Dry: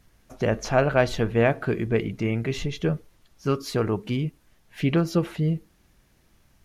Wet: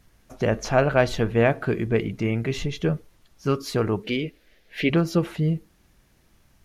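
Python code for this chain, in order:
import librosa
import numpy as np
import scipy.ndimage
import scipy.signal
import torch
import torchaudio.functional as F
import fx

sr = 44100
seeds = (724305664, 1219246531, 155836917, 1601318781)

y = fx.graphic_eq(x, sr, hz=(125, 500, 1000, 2000, 4000, 8000), db=(-11, 10, -10, 9, 6, -6), at=(4.04, 4.9))
y = y * 10.0 ** (1.0 / 20.0)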